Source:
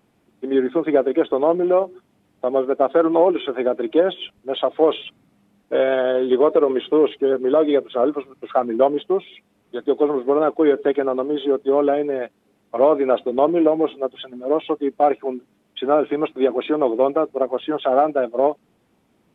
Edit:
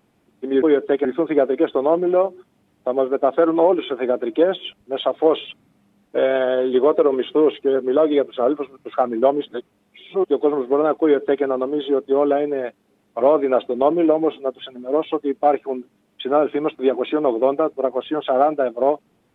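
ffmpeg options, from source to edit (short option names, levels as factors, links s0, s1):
-filter_complex "[0:a]asplit=5[s0][s1][s2][s3][s4];[s0]atrim=end=0.622[s5];[s1]atrim=start=10.578:end=11.012[s6];[s2]atrim=start=0.618:end=9.042[s7];[s3]atrim=start=9.038:end=9.872,asetpts=PTS-STARTPTS,areverse[s8];[s4]atrim=start=9.868[s9];[s5][s6]acrossfade=d=0.004:c1=hsin:c2=hsin[s10];[s10][s7]acrossfade=d=0.004:c1=hsin:c2=hsin[s11];[s11][s8]acrossfade=d=0.004:c1=hsin:c2=hsin[s12];[s12][s9]acrossfade=d=0.004:c1=hsin:c2=hsin"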